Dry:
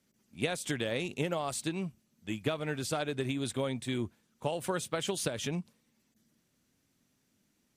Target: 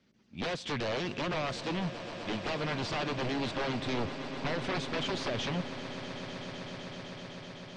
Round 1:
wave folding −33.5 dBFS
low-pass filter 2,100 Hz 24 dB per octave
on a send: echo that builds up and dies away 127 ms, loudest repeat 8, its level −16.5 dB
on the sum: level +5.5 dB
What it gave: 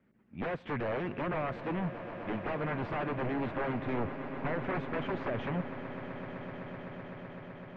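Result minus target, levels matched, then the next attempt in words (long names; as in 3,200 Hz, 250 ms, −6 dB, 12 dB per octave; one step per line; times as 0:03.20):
4,000 Hz band −14.5 dB
wave folding −33.5 dBFS
low-pass filter 4,800 Hz 24 dB per octave
on a send: echo that builds up and dies away 127 ms, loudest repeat 8, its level −16.5 dB
on the sum: level +5.5 dB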